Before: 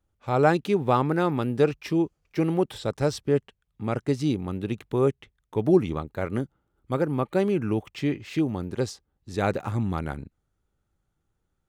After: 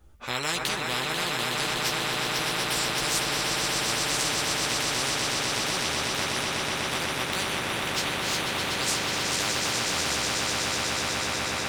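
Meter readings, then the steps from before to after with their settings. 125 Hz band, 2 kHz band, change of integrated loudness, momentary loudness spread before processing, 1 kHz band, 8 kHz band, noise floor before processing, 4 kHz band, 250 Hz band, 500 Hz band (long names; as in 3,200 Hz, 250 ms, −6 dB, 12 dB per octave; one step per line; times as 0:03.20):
−8.5 dB, +10.5 dB, +0.5 dB, 10 LU, +1.0 dB, +21.0 dB, −77 dBFS, +18.5 dB, −10.0 dB, −8.0 dB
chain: multi-voice chorus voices 6, 0.32 Hz, delay 15 ms, depth 2.7 ms
echo that builds up and dies away 123 ms, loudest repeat 8, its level −8.5 dB
every bin compressed towards the loudest bin 10 to 1
level −4 dB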